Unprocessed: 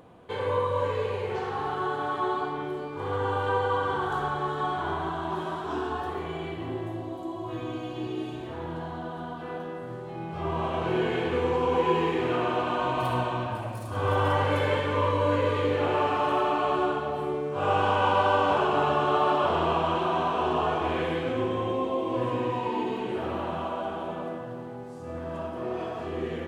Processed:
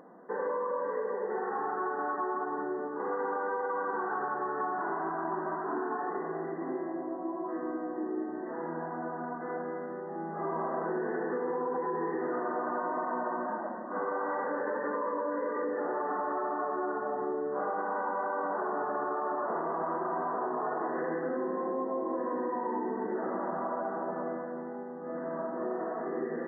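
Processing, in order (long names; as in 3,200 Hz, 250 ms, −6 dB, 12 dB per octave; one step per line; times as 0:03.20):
brickwall limiter −19.5 dBFS, peak gain reduction 8.5 dB
linear-phase brick-wall band-pass 170–2,000 Hz
downward compressor 6 to 1, threshold −29 dBFS, peak gain reduction 5.5 dB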